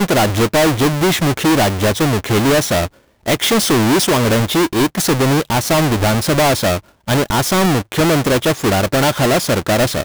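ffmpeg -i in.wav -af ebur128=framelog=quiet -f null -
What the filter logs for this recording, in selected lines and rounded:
Integrated loudness:
  I:         -14.8 LUFS
  Threshold: -24.9 LUFS
Loudness range:
  LRA:         0.9 LU
  Threshold: -34.9 LUFS
  LRA low:   -15.3 LUFS
  LRA high:  -14.4 LUFS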